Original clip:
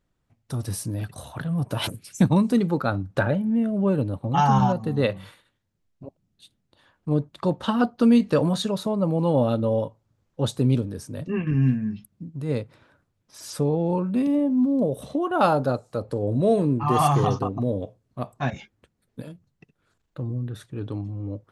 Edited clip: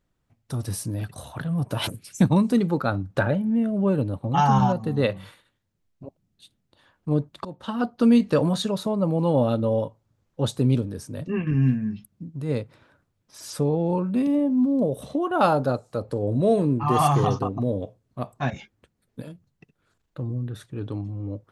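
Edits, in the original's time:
0:07.45–0:08.08: fade in, from −18 dB

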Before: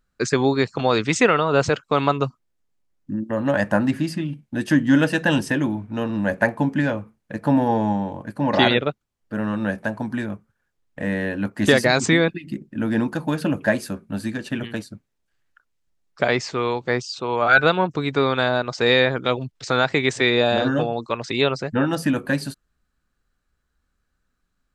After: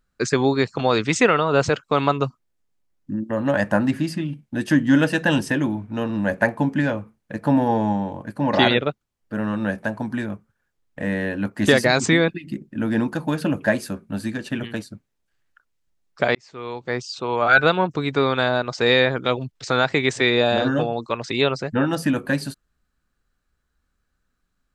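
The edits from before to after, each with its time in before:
0:16.35–0:17.22: fade in

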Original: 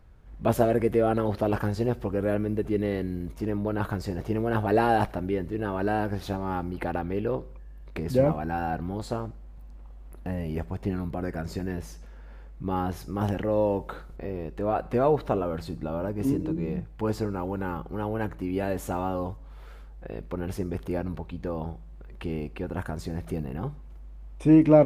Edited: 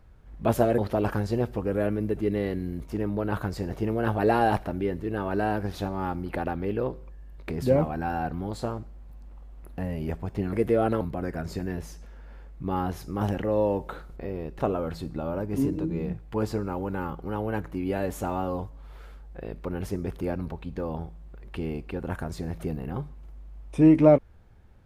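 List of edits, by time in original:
0:00.78–0:01.26: move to 0:11.01
0:14.59–0:15.26: remove

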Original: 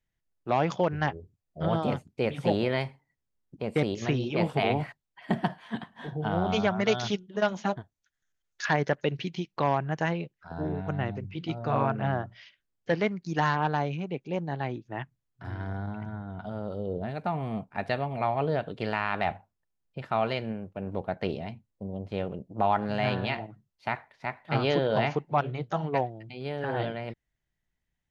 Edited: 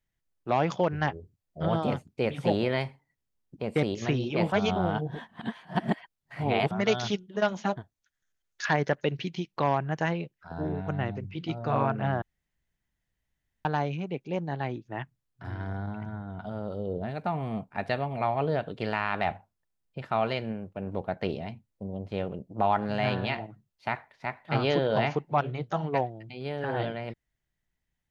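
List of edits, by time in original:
0:04.52–0:06.71: reverse
0:12.22–0:13.65: fill with room tone

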